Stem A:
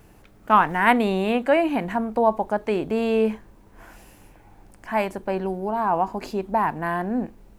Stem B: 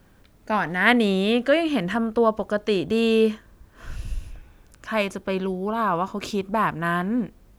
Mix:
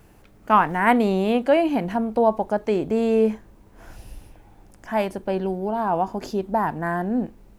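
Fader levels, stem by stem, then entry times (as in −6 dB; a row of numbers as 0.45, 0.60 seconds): −1.0, −10.5 decibels; 0.00, 0.00 seconds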